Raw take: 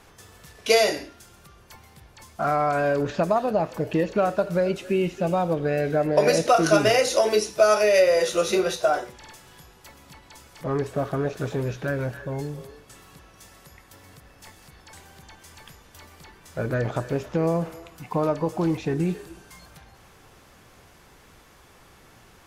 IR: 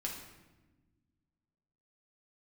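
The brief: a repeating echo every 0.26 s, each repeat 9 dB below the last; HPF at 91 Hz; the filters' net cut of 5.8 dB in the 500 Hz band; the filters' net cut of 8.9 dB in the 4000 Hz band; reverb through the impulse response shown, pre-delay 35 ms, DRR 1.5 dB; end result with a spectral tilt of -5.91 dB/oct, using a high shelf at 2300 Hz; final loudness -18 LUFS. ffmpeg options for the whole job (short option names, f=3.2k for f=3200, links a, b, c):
-filter_complex "[0:a]highpass=91,equalizer=f=500:t=o:g=-7,highshelf=f=2.3k:g=-3.5,equalizer=f=4k:t=o:g=-8.5,aecho=1:1:260|520|780|1040:0.355|0.124|0.0435|0.0152,asplit=2[a][b];[1:a]atrim=start_sample=2205,adelay=35[c];[b][c]afir=irnorm=-1:irlink=0,volume=-2dB[d];[a][d]amix=inputs=2:normalize=0,volume=7dB"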